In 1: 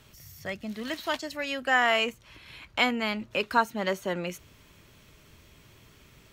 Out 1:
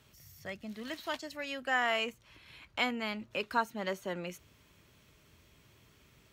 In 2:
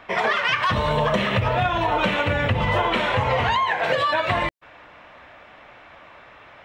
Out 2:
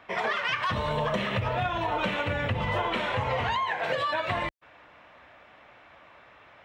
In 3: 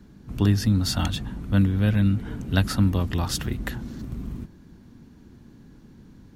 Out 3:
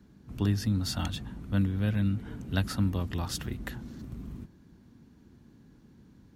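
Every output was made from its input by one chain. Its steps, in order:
high-pass filter 42 Hz
level −7 dB

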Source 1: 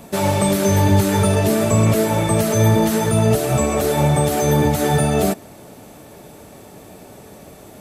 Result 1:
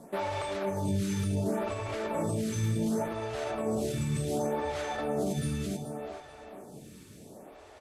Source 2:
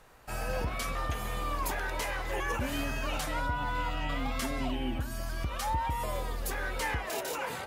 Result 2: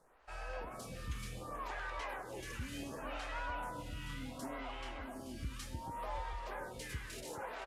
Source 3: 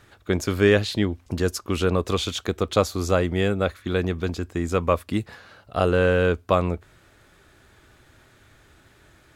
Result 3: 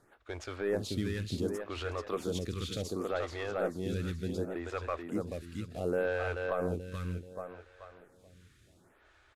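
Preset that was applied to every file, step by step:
variable-slope delta modulation 64 kbit/s
high-shelf EQ 7,700 Hz −4 dB
repeating echo 433 ms, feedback 39%, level −4.5 dB
brickwall limiter −12.5 dBFS
phaser with staggered stages 0.68 Hz
level −7.5 dB

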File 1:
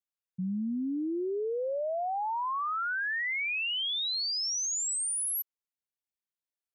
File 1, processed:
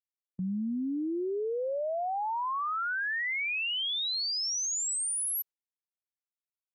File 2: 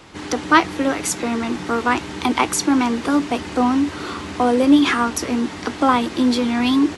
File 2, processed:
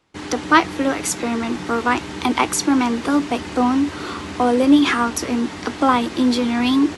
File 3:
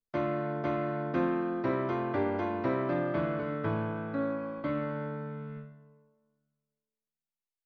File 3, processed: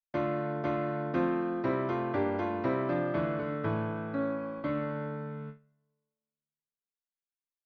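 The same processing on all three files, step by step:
noise gate with hold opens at −33 dBFS

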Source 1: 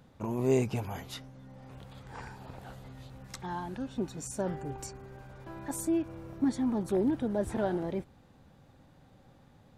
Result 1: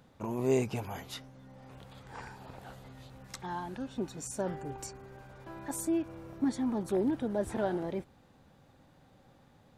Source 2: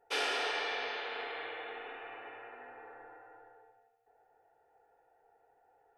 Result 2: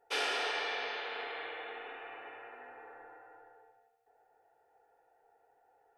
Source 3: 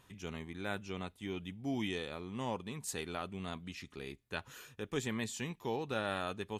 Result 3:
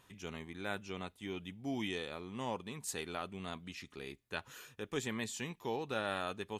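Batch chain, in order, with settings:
low-shelf EQ 210 Hz −5 dB

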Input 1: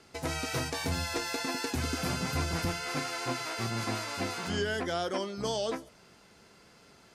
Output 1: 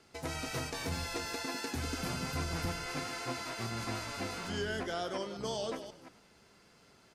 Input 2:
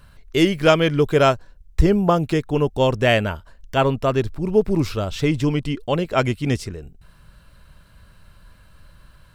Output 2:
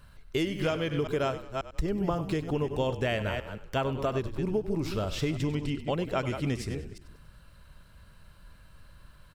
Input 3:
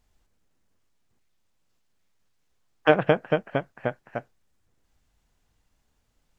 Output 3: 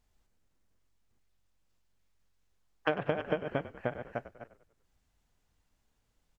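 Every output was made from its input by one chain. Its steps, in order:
delay that plays each chunk backwards 179 ms, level −11 dB
downward compressor 12 to 1, threshold −20 dBFS
echo with shifted repeats 97 ms, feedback 45%, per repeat −46 Hz, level −14 dB
level −5 dB

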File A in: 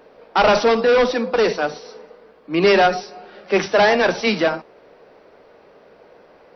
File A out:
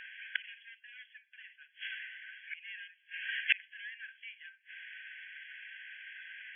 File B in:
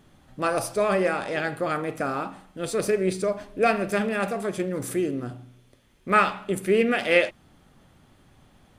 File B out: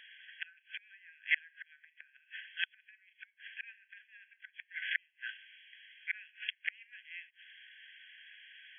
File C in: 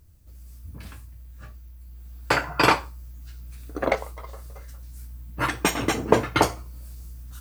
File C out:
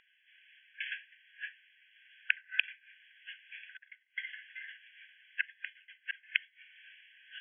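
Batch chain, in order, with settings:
gate with flip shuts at −19 dBFS, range −37 dB
linear-phase brick-wall band-pass 1,500–3,400 Hz
level +13.5 dB

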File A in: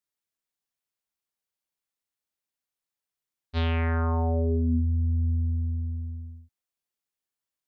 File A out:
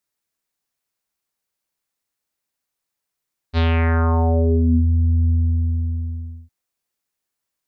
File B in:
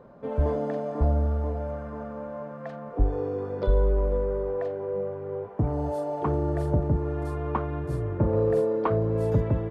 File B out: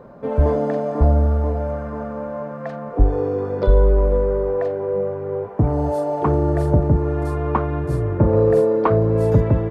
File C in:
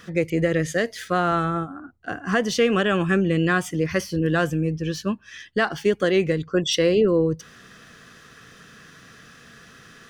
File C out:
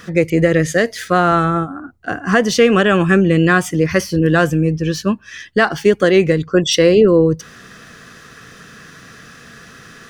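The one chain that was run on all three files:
parametric band 3,200 Hz −3 dB 0.42 octaves
level +8 dB

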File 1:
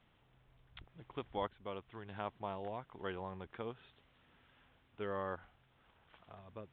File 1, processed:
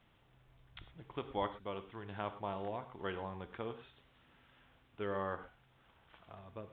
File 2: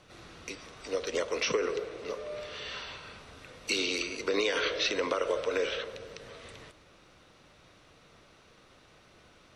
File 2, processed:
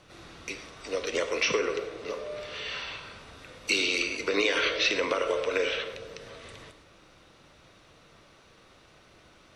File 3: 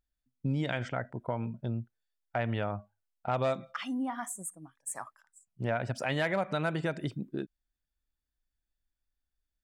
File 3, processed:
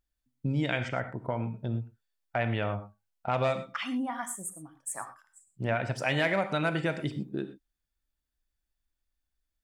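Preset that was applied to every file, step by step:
reverb whose tail is shaped and stops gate 140 ms flat, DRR 9 dB
dynamic equaliser 2,400 Hz, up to +5 dB, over −49 dBFS, Q 2.1
level +1.5 dB

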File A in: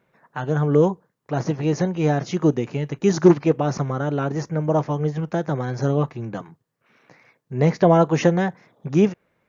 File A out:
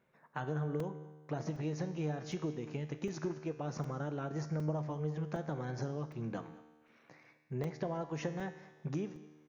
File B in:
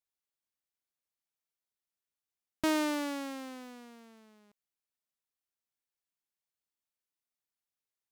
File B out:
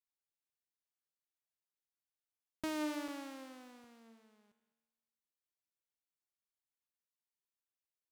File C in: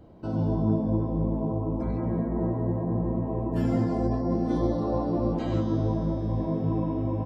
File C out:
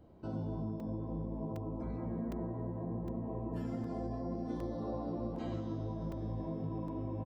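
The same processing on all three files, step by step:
downward compressor 10 to 1, threshold −26 dBFS
tuned comb filter 76 Hz, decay 1.4 s, harmonics all, mix 70%
single-tap delay 204 ms −20 dB
regular buffer underruns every 0.76 s, samples 128, zero, from 0:00.80
level +1 dB

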